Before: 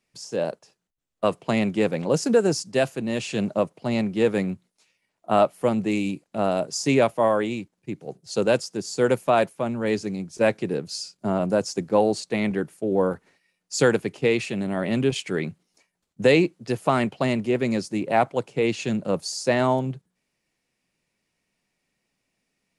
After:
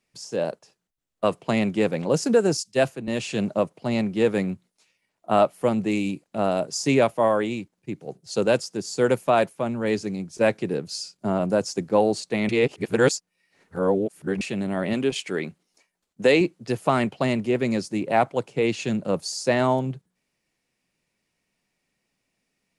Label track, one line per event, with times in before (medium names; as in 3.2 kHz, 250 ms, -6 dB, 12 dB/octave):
2.570000	3.080000	three bands expanded up and down depth 100%
12.490000	14.410000	reverse
14.930000	16.410000	peaking EQ 110 Hz -10.5 dB 1.2 oct